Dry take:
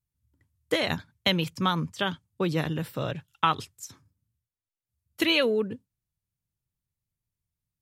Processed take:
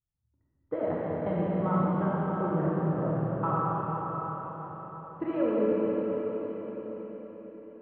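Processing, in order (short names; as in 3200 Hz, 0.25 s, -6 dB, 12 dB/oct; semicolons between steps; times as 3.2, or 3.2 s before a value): LPF 1200 Hz 24 dB/oct; reverb RT60 5.6 s, pre-delay 4 ms, DRR -8 dB; gain -7 dB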